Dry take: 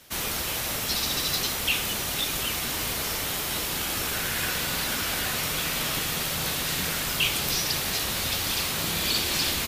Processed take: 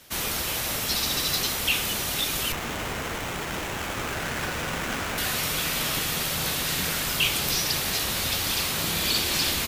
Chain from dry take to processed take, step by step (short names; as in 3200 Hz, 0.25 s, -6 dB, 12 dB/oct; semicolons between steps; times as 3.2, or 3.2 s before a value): 2.52–5.18 running maximum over 9 samples; gain +1 dB